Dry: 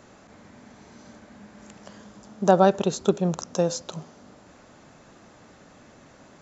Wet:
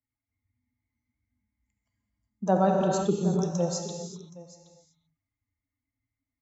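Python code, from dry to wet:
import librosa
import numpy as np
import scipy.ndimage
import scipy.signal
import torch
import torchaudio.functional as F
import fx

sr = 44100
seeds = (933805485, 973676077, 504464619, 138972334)

p1 = fx.bin_expand(x, sr, power=2.0)
p2 = scipy.signal.sosfilt(scipy.signal.butter(2, 45.0, 'highpass', fs=sr, output='sos'), p1)
p3 = fx.peak_eq(p2, sr, hz=2600.0, db=-5.0, octaves=1.8)
p4 = fx.rev_gated(p3, sr, seeds[0], gate_ms=410, shape='flat', drr_db=2.0)
p5 = fx.over_compress(p4, sr, threshold_db=-24.0, ratio=-1.0)
p6 = p4 + (p5 * librosa.db_to_amplitude(-2.5))
p7 = fx.peak_eq(p6, sr, hz=170.0, db=4.5, octaves=0.57)
p8 = p7 + fx.echo_single(p7, sr, ms=772, db=-13.5, dry=0)
p9 = fx.band_widen(p8, sr, depth_pct=40)
y = p9 * librosa.db_to_amplitude(-7.5)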